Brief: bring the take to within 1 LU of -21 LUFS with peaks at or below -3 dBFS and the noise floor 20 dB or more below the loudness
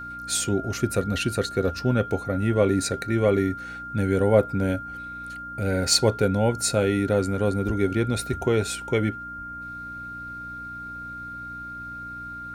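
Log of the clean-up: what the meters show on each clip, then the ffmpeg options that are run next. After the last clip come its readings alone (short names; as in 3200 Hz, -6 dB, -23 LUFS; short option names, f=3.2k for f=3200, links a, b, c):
hum 60 Hz; harmonics up to 300 Hz; hum level -43 dBFS; steady tone 1400 Hz; tone level -34 dBFS; loudness -24.0 LUFS; peak -5.5 dBFS; loudness target -21.0 LUFS
-> -af "bandreject=f=60:t=h:w=4,bandreject=f=120:t=h:w=4,bandreject=f=180:t=h:w=4,bandreject=f=240:t=h:w=4,bandreject=f=300:t=h:w=4"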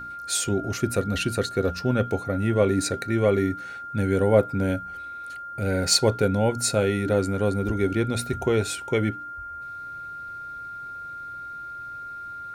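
hum none; steady tone 1400 Hz; tone level -34 dBFS
-> -af "bandreject=f=1.4k:w=30"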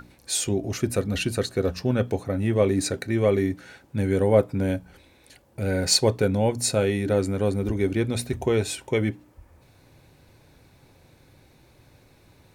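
steady tone none; loudness -24.5 LUFS; peak -5.5 dBFS; loudness target -21.0 LUFS
-> -af "volume=3.5dB,alimiter=limit=-3dB:level=0:latency=1"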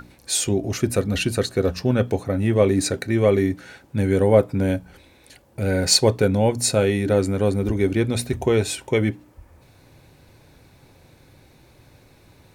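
loudness -21.0 LUFS; peak -3.0 dBFS; noise floor -54 dBFS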